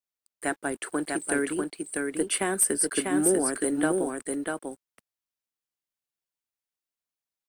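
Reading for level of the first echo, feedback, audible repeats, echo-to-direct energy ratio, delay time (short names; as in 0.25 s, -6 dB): -3.5 dB, no steady repeat, 1, -3.5 dB, 0.645 s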